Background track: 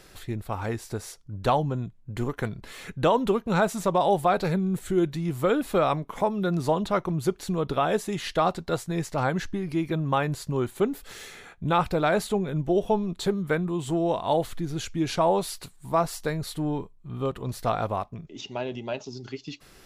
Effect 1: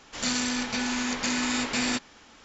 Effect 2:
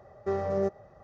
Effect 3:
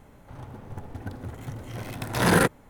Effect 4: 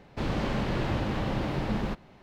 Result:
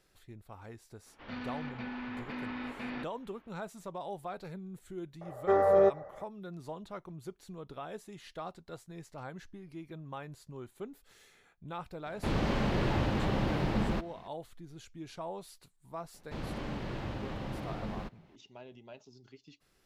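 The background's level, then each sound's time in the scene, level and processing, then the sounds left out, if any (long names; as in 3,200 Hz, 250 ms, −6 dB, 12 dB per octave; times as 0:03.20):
background track −18.5 dB
0:01.06: mix in 1 −10 dB + Gaussian smoothing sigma 3.2 samples
0:05.21: mix in 2 −6 dB + flat-topped bell 890 Hz +13 dB 2.6 octaves
0:12.06: mix in 4 −1 dB
0:16.14: mix in 4 −9.5 dB
not used: 3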